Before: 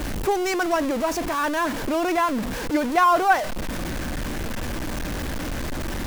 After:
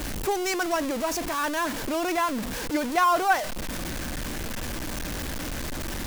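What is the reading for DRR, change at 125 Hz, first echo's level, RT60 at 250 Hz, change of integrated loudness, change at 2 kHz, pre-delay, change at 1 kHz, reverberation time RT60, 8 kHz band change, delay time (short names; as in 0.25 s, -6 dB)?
none, -4.5 dB, none, none, -3.5 dB, -2.5 dB, none, -4.0 dB, none, +1.5 dB, none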